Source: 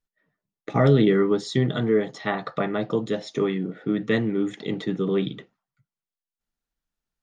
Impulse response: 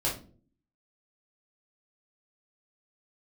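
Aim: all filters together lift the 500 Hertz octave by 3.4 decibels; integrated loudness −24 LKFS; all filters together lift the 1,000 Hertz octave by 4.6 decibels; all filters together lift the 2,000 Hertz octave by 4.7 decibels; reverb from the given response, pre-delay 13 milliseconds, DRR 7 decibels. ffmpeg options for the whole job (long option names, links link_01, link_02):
-filter_complex "[0:a]equalizer=frequency=500:width_type=o:gain=3.5,equalizer=frequency=1000:width_type=o:gain=4,equalizer=frequency=2000:width_type=o:gain=4,asplit=2[link_01][link_02];[1:a]atrim=start_sample=2205,adelay=13[link_03];[link_02][link_03]afir=irnorm=-1:irlink=0,volume=-14.5dB[link_04];[link_01][link_04]amix=inputs=2:normalize=0,volume=-3.5dB"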